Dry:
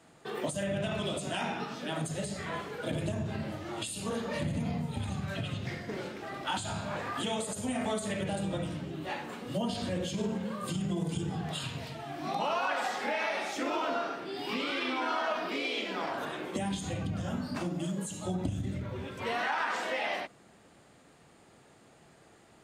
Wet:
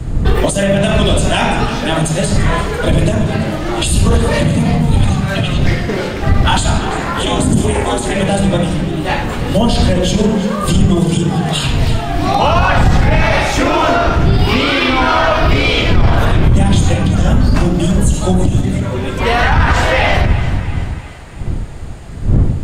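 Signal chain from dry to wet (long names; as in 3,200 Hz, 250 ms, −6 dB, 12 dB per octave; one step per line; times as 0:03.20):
wind on the microphone 97 Hz −31 dBFS
0:06.78–0:08.14: ring modulation 170 Hz
echo with a time of its own for lows and highs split 660 Hz, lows 131 ms, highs 340 ms, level −13.5 dB
boost into a limiter +20.5 dB
level −1 dB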